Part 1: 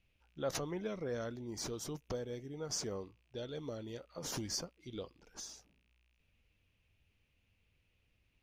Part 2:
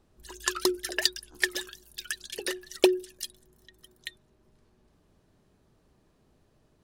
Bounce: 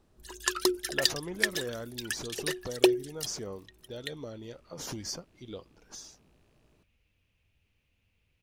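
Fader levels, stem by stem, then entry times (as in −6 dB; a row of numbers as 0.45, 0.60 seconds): +1.5, −0.5 decibels; 0.55, 0.00 seconds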